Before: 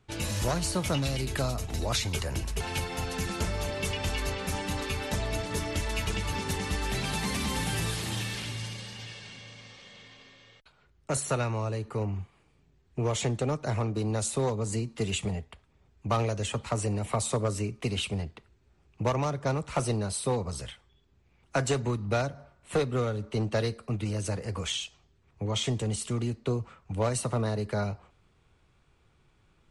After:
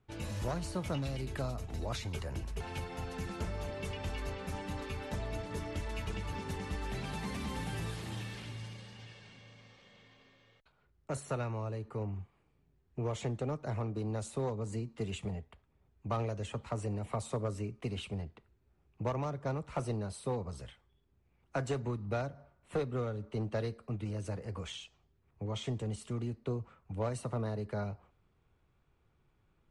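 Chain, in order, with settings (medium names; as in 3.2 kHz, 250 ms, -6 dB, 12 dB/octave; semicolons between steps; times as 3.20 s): treble shelf 2.7 kHz -10 dB; trim -6.5 dB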